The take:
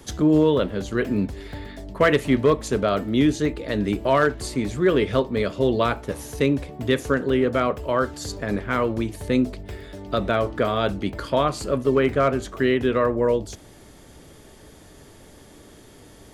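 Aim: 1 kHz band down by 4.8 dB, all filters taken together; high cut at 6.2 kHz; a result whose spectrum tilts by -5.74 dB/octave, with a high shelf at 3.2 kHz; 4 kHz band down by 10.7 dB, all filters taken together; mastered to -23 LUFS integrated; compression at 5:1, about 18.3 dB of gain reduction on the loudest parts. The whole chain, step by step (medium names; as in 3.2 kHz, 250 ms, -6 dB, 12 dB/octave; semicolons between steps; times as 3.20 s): low-pass 6.2 kHz; peaking EQ 1 kHz -5 dB; treble shelf 3.2 kHz -7 dB; peaking EQ 4 kHz -8.5 dB; compression 5:1, threshold -36 dBFS; trim +16 dB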